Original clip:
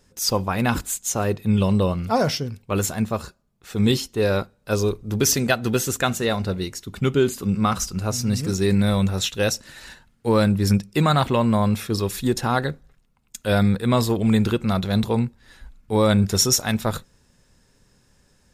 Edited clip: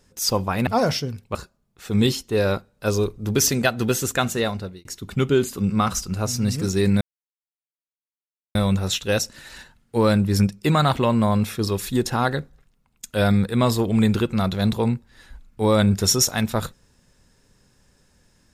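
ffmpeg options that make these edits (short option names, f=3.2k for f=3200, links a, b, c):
-filter_complex "[0:a]asplit=5[a][b][c][d][e];[a]atrim=end=0.672[f];[b]atrim=start=2.048:end=2.732[g];[c]atrim=start=3.198:end=6.7,asetpts=PTS-STARTPTS,afade=t=out:st=3.052:d=0.45[h];[d]atrim=start=6.7:end=8.86,asetpts=PTS-STARTPTS,afade=t=in:d=0.004:c=hsin,afade=t=out:st=2.156:d=0.004:c=hsin,apad=pad_dur=1.54[i];[e]atrim=start=8.86,asetpts=PTS-STARTPTS,afade=t=in:d=0.004:c=hsin[j];[f][g]acrossfade=d=0.004:c1=hsin:c2=hsin[k];[h][i][j]concat=n=3:v=0:a=1[l];[k][l]acrossfade=d=0.004:c1=hsin:c2=hsin"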